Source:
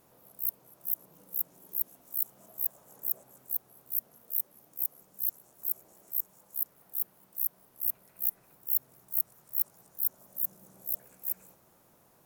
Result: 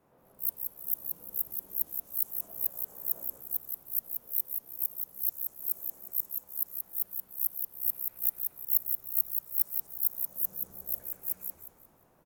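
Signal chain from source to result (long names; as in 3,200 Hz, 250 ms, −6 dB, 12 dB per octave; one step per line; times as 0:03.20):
echo with shifted repeats 178 ms, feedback 40%, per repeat −110 Hz, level −4 dB
multiband upward and downward expander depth 40%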